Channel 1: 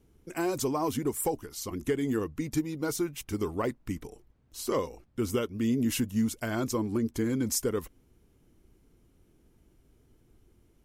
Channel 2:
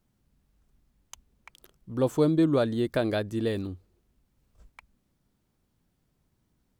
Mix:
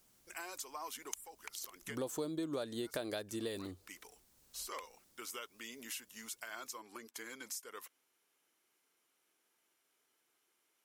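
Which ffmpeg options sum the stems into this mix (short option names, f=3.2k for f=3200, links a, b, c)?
-filter_complex "[0:a]highpass=1.1k,alimiter=level_in=1.5dB:limit=-24dB:level=0:latency=1:release=307,volume=-1.5dB,volume=-1dB[a];[1:a]bass=f=250:g=-11,treble=f=4k:g=14,acompressor=threshold=-30dB:ratio=2,highshelf=f=8.2k:g=-2.5,volume=2.5dB,asplit=2[b][c];[c]apad=whole_len=478172[d];[a][d]sidechaincompress=threshold=-42dB:ratio=6:attack=34:release=336[e];[e][b]amix=inputs=2:normalize=0,acompressor=threshold=-45dB:ratio=2"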